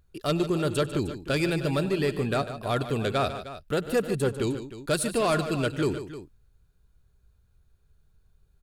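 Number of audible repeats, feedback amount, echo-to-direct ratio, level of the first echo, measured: 3, no regular repeats, -9.0 dB, -19.0 dB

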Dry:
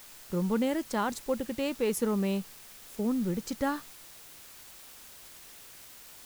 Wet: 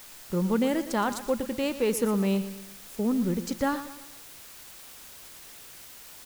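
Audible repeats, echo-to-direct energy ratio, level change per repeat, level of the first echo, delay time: 4, -12.0 dB, -7.5 dB, -13.0 dB, 118 ms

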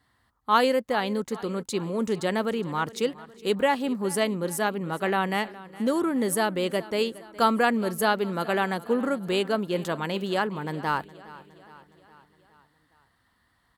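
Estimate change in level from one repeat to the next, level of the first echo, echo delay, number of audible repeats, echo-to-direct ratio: -5.0 dB, -19.0 dB, 414 ms, 4, -17.5 dB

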